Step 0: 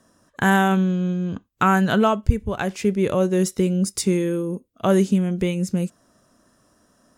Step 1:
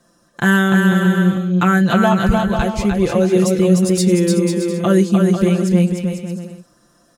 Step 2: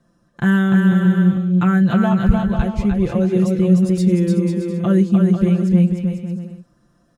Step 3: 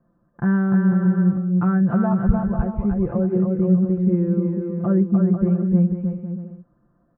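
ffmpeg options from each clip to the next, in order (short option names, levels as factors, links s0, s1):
-filter_complex "[0:a]equalizer=f=4200:t=o:w=0.25:g=5.5,aecho=1:1:5.8:0.88,asplit=2[s0][s1];[s1]aecho=0:1:300|495|621.8|704.1|757.7:0.631|0.398|0.251|0.158|0.1[s2];[s0][s2]amix=inputs=2:normalize=0"
-af "bass=f=250:g=10,treble=f=4000:g=-8,volume=0.447"
-af "lowpass=f=1400:w=0.5412,lowpass=f=1400:w=1.3066,volume=0.668"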